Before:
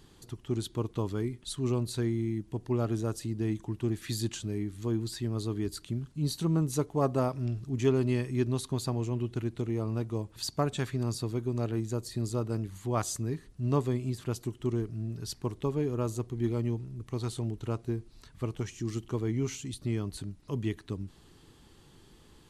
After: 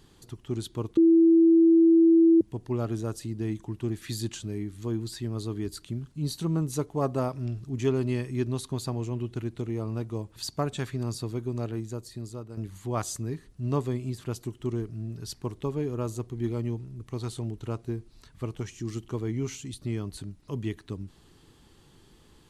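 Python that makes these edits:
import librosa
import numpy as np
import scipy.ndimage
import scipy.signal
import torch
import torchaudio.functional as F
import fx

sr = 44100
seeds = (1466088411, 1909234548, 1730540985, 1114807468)

y = fx.edit(x, sr, fx.bleep(start_s=0.97, length_s=1.44, hz=330.0, db=-14.5),
    fx.fade_out_to(start_s=11.53, length_s=1.04, floor_db=-11.0), tone=tone)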